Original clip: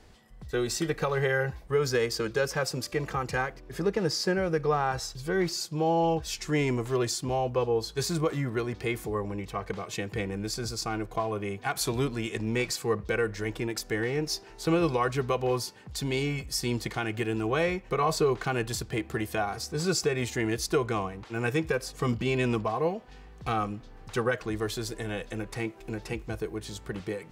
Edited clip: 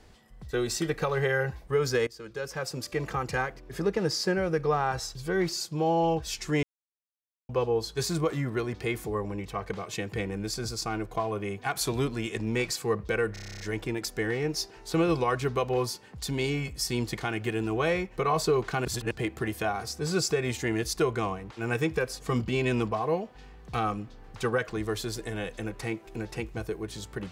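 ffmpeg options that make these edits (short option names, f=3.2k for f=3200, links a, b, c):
-filter_complex "[0:a]asplit=15[a][b][c][d][e][f][g][h][i][j][k][l][m][n][o];[a]atrim=end=2.07,asetpts=PTS-STARTPTS,afade=t=out:st=2.066:d=0.004:c=hsin:silence=0.1[p];[b]atrim=start=2.07:end=6.63,asetpts=PTS-STARTPTS,afade=t=in:d=0.98:silence=0.1,afade=t=out:st=4.556:d=0.004:c=hsin[q];[c]atrim=start=6.63:end=7.49,asetpts=PTS-STARTPTS,volume=0[r];[d]atrim=start=7.49:end=13.362,asetpts=PTS-STARTPTS,afade=t=in:d=0.004:c=hsin[s];[e]atrim=start=13.328:end=13.362[t];[f]atrim=start=13.328:end=13.362[u];[g]atrim=start=13.328:end=13.362[v];[h]atrim=start=13.328:end=13.362[w];[i]atrim=start=13.328:end=13.362[x];[j]atrim=start=13.328:end=13.362[y];[k]atrim=start=13.328:end=13.362[z];[l]atrim=start=13.328:end=13.362[aa];[m]atrim=start=13.328:end=18.582[ab];[n]atrim=start=18.578:end=18.842,asetpts=PTS-STARTPTS,areverse[ac];[o]atrim=start=18.838[ad];[p][q][r][s]concat=n=4:v=0:a=1[ae];[ae][t]acrossfade=d=0.004:c1=hsin:c2=hsin[af];[af][u]acrossfade=d=0.004:c1=hsin:c2=hsin[ag];[ag][v]acrossfade=d=0.004:c1=hsin:c2=hsin[ah];[ah][w]acrossfade=d=0.004:c1=hsin:c2=hsin[ai];[ai][x]acrossfade=d=0.004:c1=hsin:c2=hsin[aj];[aj][y]acrossfade=d=0.004:c1=hsin:c2=hsin[ak];[ak][z]acrossfade=d=0.004:c1=hsin:c2=hsin[al];[al][aa]acrossfade=d=0.004:c1=hsin:c2=hsin[am];[am][ab]acrossfade=d=0.004:c1=hsin:c2=hsin[an];[an][ac]acrossfade=d=0.004:c1=hsin:c2=hsin[ao];[ao][ad]acrossfade=d=0.004:c1=hsin:c2=hsin"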